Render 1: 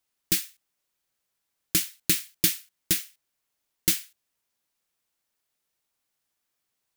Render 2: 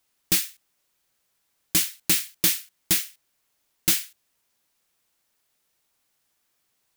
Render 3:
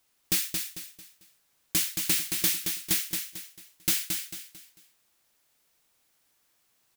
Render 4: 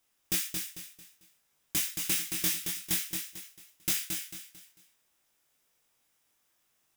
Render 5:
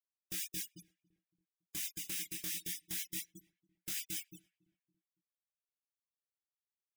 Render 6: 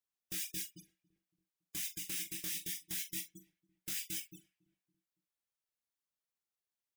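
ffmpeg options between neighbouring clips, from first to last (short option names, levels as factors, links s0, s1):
-af "asoftclip=type=tanh:threshold=0.0841,volume=2.37"
-filter_complex "[0:a]alimiter=limit=0.0944:level=0:latency=1:release=96,asplit=2[s0][s1];[s1]aecho=0:1:223|446|669|892:0.531|0.186|0.065|0.0228[s2];[s0][s2]amix=inputs=2:normalize=0,volume=1.19"
-af "bandreject=f=4300:w=9.1,flanger=delay=20:depth=3.2:speed=0.54"
-filter_complex "[0:a]afftfilt=real='re*gte(hypot(re,im),0.0126)':imag='im*gte(hypot(re,im),0.0126)':win_size=1024:overlap=0.75,areverse,acompressor=threshold=0.0141:ratio=16,areverse,asplit=2[s0][s1];[s1]adelay=281,lowpass=f=1100:p=1,volume=0.0708,asplit=2[s2][s3];[s3]adelay=281,lowpass=f=1100:p=1,volume=0.51,asplit=2[s4][s5];[s5]adelay=281,lowpass=f=1100:p=1,volume=0.51[s6];[s0][s2][s4][s6]amix=inputs=4:normalize=0"
-filter_complex "[0:a]asplit=2[s0][s1];[s1]adelay=43,volume=0.282[s2];[s0][s2]amix=inputs=2:normalize=0"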